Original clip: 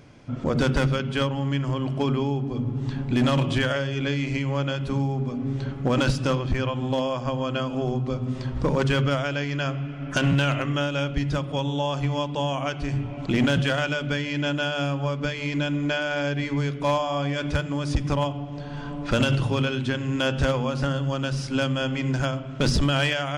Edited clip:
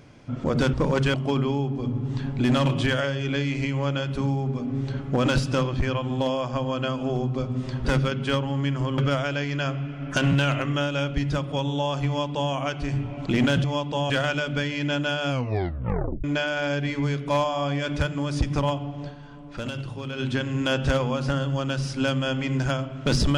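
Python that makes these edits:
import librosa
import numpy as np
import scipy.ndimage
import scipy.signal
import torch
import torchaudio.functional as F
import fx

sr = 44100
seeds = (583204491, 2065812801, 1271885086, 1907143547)

y = fx.edit(x, sr, fx.swap(start_s=0.73, length_s=1.13, other_s=8.57, other_length_s=0.41),
    fx.duplicate(start_s=12.07, length_s=0.46, to_s=13.64),
    fx.tape_stop(start_s=14.84, length_s=0.94),
    fx.fade_down_up(start_s=18.62, length_s=1.13, db=-10.5, fade_s=0.49, curve='exp'), tone=tone)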